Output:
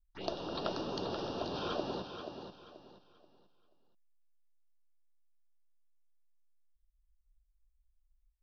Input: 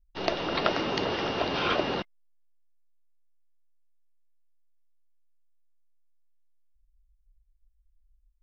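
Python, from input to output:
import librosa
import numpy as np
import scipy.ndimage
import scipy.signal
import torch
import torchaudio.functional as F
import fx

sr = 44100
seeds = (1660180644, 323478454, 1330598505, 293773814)

p1 = fx.env_phaser(x, sr, low_hz=420.0, high_hz=2100.0, full_db=-29.0)
p2 = p1 + fx.echo_feedback(p1, sr, ms=482, feedback_pct=30, wet_db=-8, dry=0)
y = F.gain(torch.from_numpy(p2), -8.0).numpy()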